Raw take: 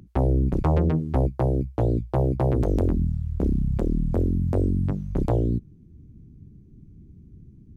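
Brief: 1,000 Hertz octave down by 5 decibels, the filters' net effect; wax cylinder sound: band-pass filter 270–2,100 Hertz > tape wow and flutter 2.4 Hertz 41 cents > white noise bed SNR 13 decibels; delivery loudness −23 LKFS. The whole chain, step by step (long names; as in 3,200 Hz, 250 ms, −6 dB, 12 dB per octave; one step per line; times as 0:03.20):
band-pass filter 270–2,100 Hz
parametric band 1,000 Hz −7 dB
tape wow and flutter 2.4 Hz 41 cents
white noise bed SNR 13 dB
level +9.5 dB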